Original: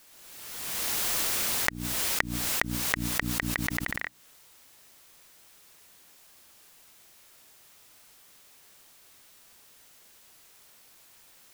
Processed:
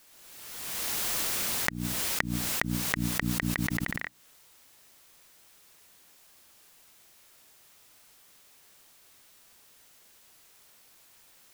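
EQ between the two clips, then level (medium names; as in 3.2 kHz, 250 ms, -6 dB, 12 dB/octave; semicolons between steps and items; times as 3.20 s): dynamic bell 170 Hz, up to +7 dB, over -47 dBFS, Q 0.97; -2.0 dB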